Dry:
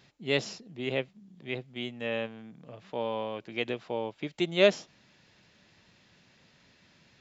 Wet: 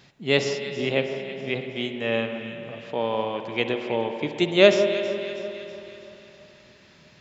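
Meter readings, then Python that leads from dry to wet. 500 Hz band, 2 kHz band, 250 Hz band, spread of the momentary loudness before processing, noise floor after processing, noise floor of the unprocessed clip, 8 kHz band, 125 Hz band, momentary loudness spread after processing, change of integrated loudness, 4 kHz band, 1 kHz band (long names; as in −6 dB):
+8.0 dB, +7.5 dB, +8.0 dB, 19 LU, −54 dBFS, −63 dBFS, can't be measured, +7.0 dB, 19 LU, +7.0 dB, +7.5 dB, +7.5 dB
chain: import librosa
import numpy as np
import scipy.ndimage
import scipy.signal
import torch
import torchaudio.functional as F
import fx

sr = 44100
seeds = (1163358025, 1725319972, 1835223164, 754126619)

p1 = x + fx.echo_alternate(x, sr, ms=161, hz=1300.0, feedback_pct=72, wet_db=-11, dry=0)
p2 = fx.rev_spring(p1, sr, rt60_s=3.2, pass_ms=(52,), chirp_ms=25, drr_db=7.0)
y = F.gain(torch.from_numpy(p2), 6.5).numpy()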